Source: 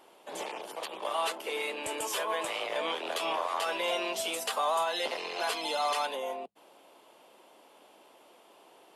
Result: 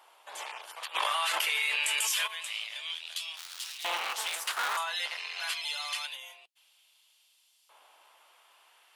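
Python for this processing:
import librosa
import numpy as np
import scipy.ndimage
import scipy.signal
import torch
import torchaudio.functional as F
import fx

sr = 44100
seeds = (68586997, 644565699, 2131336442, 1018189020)

y = fx.cycle_switch(x, sr, every=3, mode='inverted', at=(3.37, 4.77))
y = fx.filter_lfo_highpass(y, sr, shape='saw_up', hz=0.26, low_hz=960.0, high_hz=4700.0, q=1.2)
y = fx.env_flatten(y, sr, amount_pct=100, at=(0.94, 2.26), fade=0.02)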